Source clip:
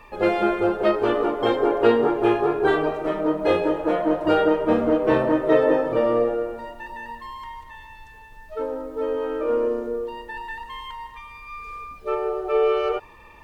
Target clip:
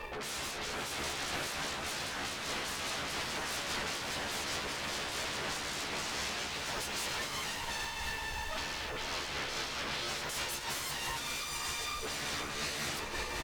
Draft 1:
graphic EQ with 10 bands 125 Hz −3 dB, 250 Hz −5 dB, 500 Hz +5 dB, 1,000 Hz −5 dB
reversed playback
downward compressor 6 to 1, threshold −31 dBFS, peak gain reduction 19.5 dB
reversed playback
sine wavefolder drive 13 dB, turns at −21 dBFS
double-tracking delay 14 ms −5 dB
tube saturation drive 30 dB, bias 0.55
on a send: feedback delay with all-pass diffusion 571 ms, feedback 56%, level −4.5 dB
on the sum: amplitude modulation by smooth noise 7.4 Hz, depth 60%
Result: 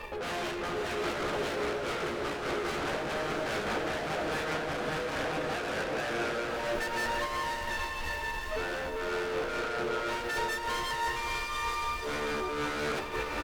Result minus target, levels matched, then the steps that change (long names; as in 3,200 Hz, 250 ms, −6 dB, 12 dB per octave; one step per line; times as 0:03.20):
sine wavefolder: distortion −26 dB
change: sine wavefolder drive 13 dB, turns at −31.5 dBFS